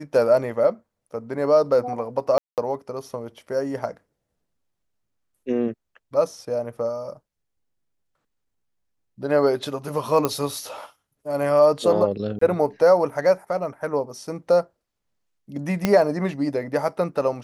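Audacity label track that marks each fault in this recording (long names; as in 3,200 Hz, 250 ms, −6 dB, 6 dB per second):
2.380000	2.580000	drop-out 198 ms
10.250000	10.250000	click −7 dBFS
12.390000	12.410000	drop-out 24 ms
15.850000	15.850000	click −6 dBFS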